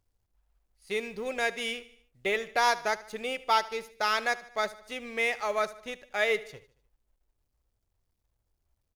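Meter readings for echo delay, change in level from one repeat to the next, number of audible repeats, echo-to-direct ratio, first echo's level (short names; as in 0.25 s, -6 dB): 75 ms, -5.5 dB, 3, -16.5 dB, -18.0 dB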